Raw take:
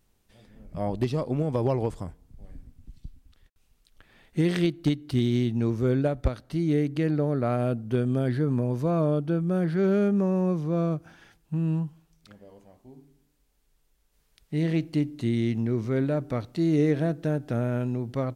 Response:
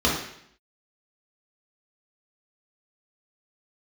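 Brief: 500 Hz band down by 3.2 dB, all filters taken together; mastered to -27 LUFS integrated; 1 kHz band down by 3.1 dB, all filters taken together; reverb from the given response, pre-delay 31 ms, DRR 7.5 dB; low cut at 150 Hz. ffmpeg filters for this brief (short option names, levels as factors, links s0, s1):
-filter_complex "[0:a]highpass=150,equalizer=f=500:t=o:g=-3.5,equalizer=f=1000:t=o:g=-3,asplit=2[s0][s1];[1:a]atrim=start_sample=2205,adelay=31[s2];[s1][s2]afir=irnorm=-1:irlink=0,volume=0.0631[s3];[s0][s3]amix=inputs=2:normalize=0"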